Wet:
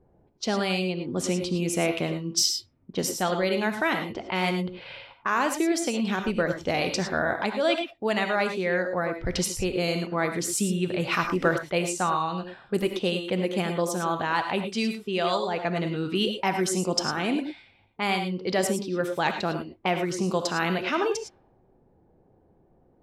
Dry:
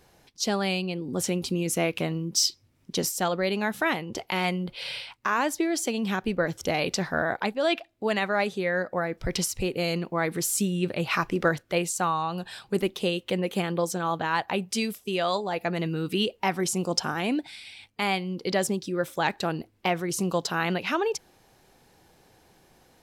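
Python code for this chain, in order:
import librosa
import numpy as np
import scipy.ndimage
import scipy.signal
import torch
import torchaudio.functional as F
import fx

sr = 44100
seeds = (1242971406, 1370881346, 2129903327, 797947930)

y = fx.env_lowpass(x, sr, base_hz=520.0, full_db=-22.5)
y = fx.rev_gated(y, sr, seeds[0], gate_ms=130, shape='rising', drr_db=6.5)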